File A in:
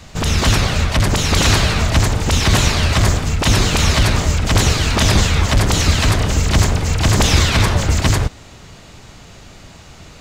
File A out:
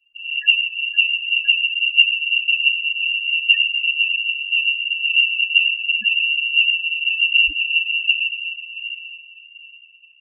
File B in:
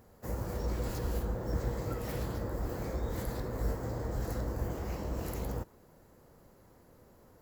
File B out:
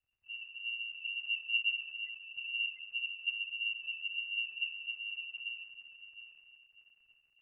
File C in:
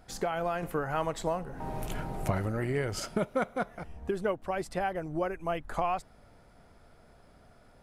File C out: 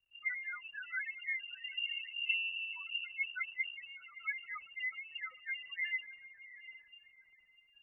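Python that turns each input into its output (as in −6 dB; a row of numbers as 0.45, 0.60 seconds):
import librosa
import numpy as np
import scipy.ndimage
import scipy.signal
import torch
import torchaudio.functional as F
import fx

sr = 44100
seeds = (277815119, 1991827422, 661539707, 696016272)

p1 = scipy.signal.sosfilt(scipy.signal.cheby1(5, 1.0, [160.0, 620.0], 'bandstop', fs=sr, output='sos'), x)
p2 = fx.hpss(p1, sr, part='percussive', gain_db=8)
p3 = p2 + fx.echo_diffused(p2, sr, ms=730, feedback_pct=48, wet_db=-5.5, dry=0)
p4 = fx.spec_topn(p3, sr, count=2)
p5 = fx.dmg_crackle(p4, sr, seeds[0], per_s=190.0, level_db=-48.0)
p6 = fx.freq_invert(p5, sr, carrier_hz=2800)
p7 = fx.band_widen(p6, sr, depth_pct=70)
y = F.gain(torch.from_numpy(p7), -5.0).numpy()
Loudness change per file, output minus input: −0.5, +1.0, −5.0 LU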